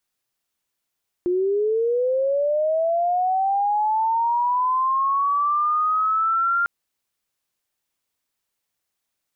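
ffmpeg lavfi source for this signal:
ffmpeg -f lavfi -i "aevalsrc='pow(10,(-18+0.5*t/5.4)/20)*sin(2*PI*(350*t+1050*t*t/(2*5.4)))':duration=5.4:sample_rate=44100" out.wav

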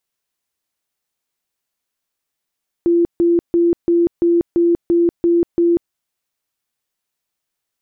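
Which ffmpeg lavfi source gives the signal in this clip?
ffmpeg -f lavfi -i "aevalsrc='0.299*sin(2*PI*342*mod(t,0.34))*lt(mod(t,0.34),65/342)':duration=3.06:sample_rate=44100" out.wav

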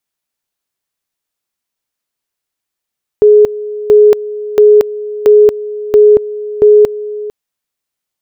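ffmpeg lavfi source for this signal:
ffmpeg -f lavfi -i "aevalsrc='pow(10,(-1.5-16.5*gte(mod(t,0.68),0.23))/20)*sin(2*PI*420*t)':duration=4.08:sample_rate=44100" out.wav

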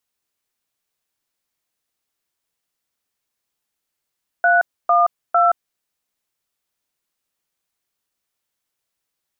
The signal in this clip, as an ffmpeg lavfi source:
ffmpeg -f lavfi -i "aevalsrc='0.2*clip(min(mod(t,0.452),0.173-mod(t,0.452))/0.002,0,1)*(eq(floor(t/0.452),0)*(sin(2*PI*697*mod(t,0.452))+sin(2*PI*1477*mod(t,0.452)))+eq(floor(t/0.452),1)*(sin(2*PI*697*mod(t,0.452))+sin(2*PI*1209*mod(t,0.452)))+eq(floor(t/0.452),2)*(sin(2*PI*697*mod(t,0.452))+sin(2*PI*1336*mod(t,0.452))))':duration=1.356:sample_rate=44100" out.wav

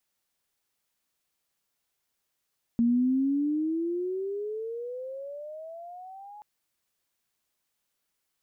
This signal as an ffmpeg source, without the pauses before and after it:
ffmpeg -f lavfi -i "aevalsrc='pow(10,(-19.5-23.5*t/3.63)/20)*sin(2*PI*231*3.63/(22.5*log(2)/12)*(exp(22.5*log(2)/12*t/3.63)-1))':duration=3.63:sample_rate=44100" out.wav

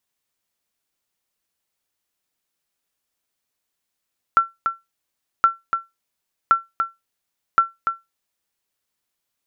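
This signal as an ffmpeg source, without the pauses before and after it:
ffmpeg -f lavfi -i "aevalsrc='0.531*(sin(2*PI*1350*mod(t,1.07))*exp(-6.91*mod(t,1.07)/0.19)+0.447*sin(2*PI*1350*max(mod(t,1.07)-0.29,0))*exp(-6.91*max(mod(t,1.07)-0.29,0)/0.19))':duration=4.28:sample_rate=44100" out.wav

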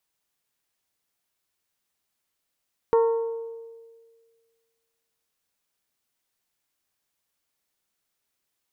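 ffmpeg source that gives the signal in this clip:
ffmpeg -f lavfi -i "aevalsrc='0.178*pow(10,-3*t/1.75)*sin(2*PI*458*t)+0.0708*pow(10,-3*t/1.077)*sin(2*PI*916*t)+0.0282*pow(10,-3*t/0.948)*sin(2*PI*1099.2*t)+0.0112*pow(10,-3*t/0.811)*sin(2*PI*1374*t)+0.00447*pow(10,-3*t/0.663)*sin(2*PI*1832*t)':duration=3.37:sample_rate=44100" out.wav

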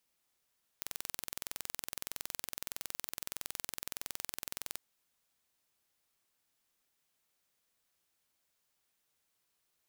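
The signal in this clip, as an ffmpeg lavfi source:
ffmpeg -f lavfi -i "aevalsrc='0.282*eq(mod(n,2042),0)':duration=3.97:sample_rate=44100" out.wav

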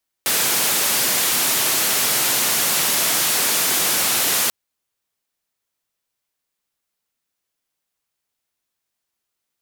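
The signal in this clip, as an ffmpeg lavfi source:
ffmpeg -f lavfi -i "anoisesrc=color=white:duration=4.24:sample_rate=44100:seed=1,highpass=frequency=140,lowpass=frequency=16000,volume=-12.7dB" out.wav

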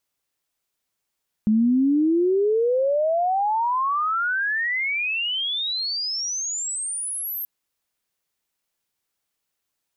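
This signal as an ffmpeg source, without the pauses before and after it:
ffmpeg -f lavfi -i "aevalsrc='pow(10,(-15-11.5*t/5.98)/20)*sin(2*PI*210*5.98/log(13000/210)*(exp(log(13000/210)*t/5.98)-1))':duration=5.98:sample_rate=44100" out.wav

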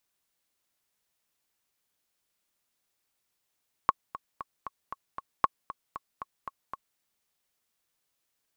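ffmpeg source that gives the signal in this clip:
ffmpeg -f lavfi -i "aevalsrc='pow(10,(-7.5-16*gte(mod(t,6*60/232),60/232))/20)*sin(2*PI*1100*mod(t,60/232))*exp(-6.91*mod(t,60/232)/0.03)':duration=3.1:sample_rate=44100" out.wav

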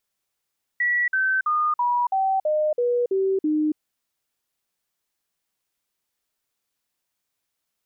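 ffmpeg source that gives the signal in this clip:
ffmpeg -f lavfi -i "aevalsrc='0.119*clip(min(mod(t,0.33),0.28-mod(t,0.33))/0.005,0,1)*sin(2*PI*1940*pow(2,-floor(t/0.33)/3)*mod(t,0.33))':duration=2.97:sample_rate=44100" out.wav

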